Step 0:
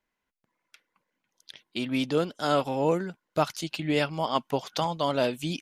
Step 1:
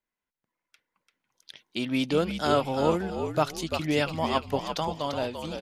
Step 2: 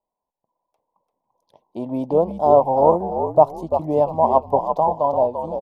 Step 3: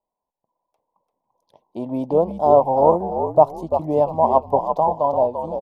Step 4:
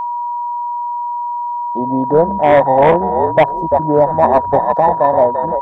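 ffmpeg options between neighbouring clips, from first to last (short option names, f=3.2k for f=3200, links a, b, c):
-filter_complex "[0:a]dynaudnorm=f=340:g=7:m=10dB,asplit=2[a][b];[b]asplit=4[c][d][e][f];[c]adelay=342,afreqshift=-62,volume=-7dB[g];[d]adelay=684,afreqshift=-124,volume=-17.5dB[h];[e]adelay=1026,afreqshift=-186,volume=-27.9dB[i];[f]adelay=1368,afreqshift=-248,volume=-38.4dB[j];[g][h][i][j]amix=inputs=4:normalize=0[k];[a][k]amix=inputs=2:normalize=0,volume=-8dB"
-af "firequalizer=gain_entry='entry(310,0);entry(620,12);entry(990,11);entry(1400,-27);entry(13000,-13)':delay=0.05:min_phase=1,volume=2dB"
-af anull
-af "volume=12dB,asoftclip=hard,volume=-12dB,afwtdn=0.0447,aeval=exprs='val(0)+0.0562*sin(2*PI*960*n/s)':c=same,volume=7dB"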